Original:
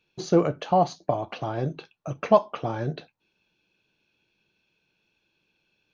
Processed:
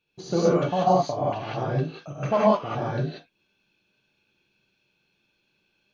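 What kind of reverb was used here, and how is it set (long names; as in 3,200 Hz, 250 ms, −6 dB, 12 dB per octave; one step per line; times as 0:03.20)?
reverb whose tail is shaped and stops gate 210 ms rising, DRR −8 dB
level −6.5 dB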